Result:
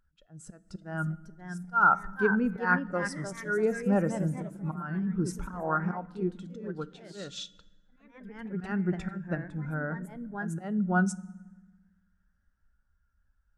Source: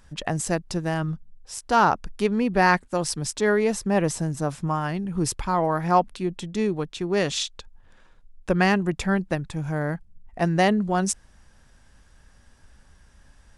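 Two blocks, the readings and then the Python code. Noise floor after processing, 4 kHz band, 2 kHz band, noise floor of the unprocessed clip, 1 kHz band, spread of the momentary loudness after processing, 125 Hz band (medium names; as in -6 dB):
-71 dBFS, -14.5 dB, -3.5 dB, -56 dBFS, -7.5 dB, 16 LU, -6.0 dB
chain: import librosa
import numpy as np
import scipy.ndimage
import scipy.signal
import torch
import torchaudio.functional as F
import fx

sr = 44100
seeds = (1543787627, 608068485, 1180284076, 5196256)

y = fx.peak_eq(x, sr, hz=1400.0, db=14.5, octaves=0.25)
y = fx.auto_swell(y, sr, attack_ms=239.0)
y = fx.echo_pitch(y, sr, ms=625, semitones=2, count=3, db_per_echo=-6.0)
y = fx.rev_fdn(y, sr, rt60_s=1.8, lf_ratio=1.35, hf_ratio=0.75, size_ms=31.0, drr_db=12.5)
y = fx.spectral_expand(y, sr, expansion=1.5)
y = y * librosa.db_to_amplitude(-5.0)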